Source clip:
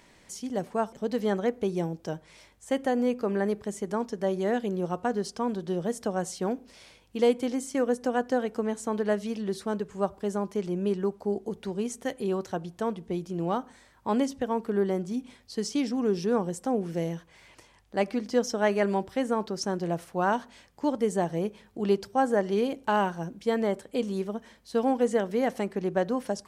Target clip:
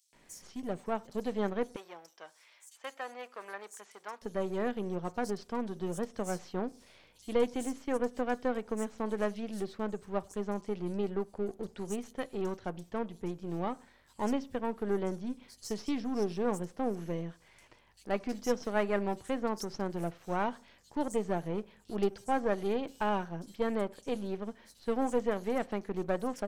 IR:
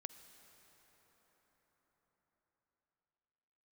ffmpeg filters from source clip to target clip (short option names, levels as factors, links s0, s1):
-filter_complex "[0:a]aeval=exprs='if(lt(val(0),0),0.447*val(0),val(0))':c=same,asettb=1/sr,asplit=3[s0][s1][s2];[s0]atrim=end=1.634[s3];[s1]atrim=start=1.63:end=4.09,asetpts=PTS-STARTPTS,afade=t=in:d=0.004:c=qsin,afade=t=out:st=2.456:d=0.004:c=qsin,highpass=960[s4];[s2]atrim=start=4.086[s5];[s3][s4]acrossfade=d=0.004:c1=hsin:c2=qsin[s6];[s6][s5]acrossfade=d=0.004:c1=qsin:c2=hsin,acrossover=split=4800[s7][s8];[s7]adelay=130[s9];[s9][s8]amix=inputs=2:normalize=0,volume=0.708"